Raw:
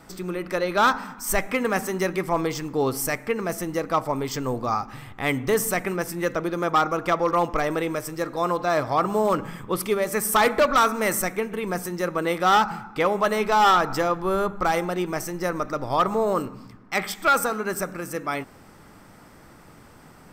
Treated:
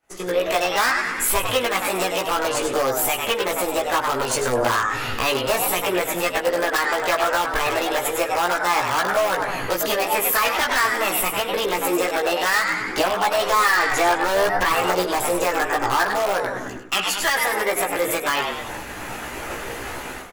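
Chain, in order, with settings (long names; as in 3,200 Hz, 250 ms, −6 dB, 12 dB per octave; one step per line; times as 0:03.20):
formants moved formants +5 semitones
automatic gain control gain up to 12 dB
on a send: echo with shifted repeats 99 ms, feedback 34%, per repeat +100 Hz, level −8 dB
on the sum: downward compressor 4 to 1, threshold −27 dBFS, peak gain reduction 16.5 dB
in parallel at −4.5 dB: wrap-around overflow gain 20.5 dB
on the sum: low-shelf EQ 230 Hz −5 dB
multi-voice chorus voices 4, 0.26 Hz, delay 16 ms, depth 1.3 ms
parametric band 160 Hz −10.5 dB 0.96 octaves
downward expander −35 dBFS
level +8 dB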